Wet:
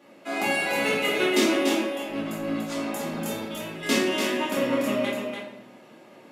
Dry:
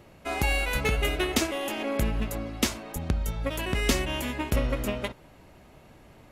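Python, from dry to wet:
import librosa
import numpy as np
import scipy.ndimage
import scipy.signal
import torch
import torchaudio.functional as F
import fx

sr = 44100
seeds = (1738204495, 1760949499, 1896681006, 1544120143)

y = scipy.signal.sosfilt(scipy.signal.butter(4, 220.0, 'highpass', fs=sr, output='sos'), x)
y = fx.high_shelf(y, sr, hz=11000.0, db=-6.0)
y = fx.over_compress(y, sr, threshold_db=-38.0, ratio=-0.5, at=(1.77, 3.83))
y = y + 10.0 ** (-5.5 / 20.0) * np.pad(y, (int(290 * sr / 1000.0), 0))[:len(y)]
y = fx.room_shoebox(y, sr, seeds[0], volume_m3=220.0, walls='mixed', distance_m=2.4)
y = y * 10.0 ** (-4.5 / 20.0)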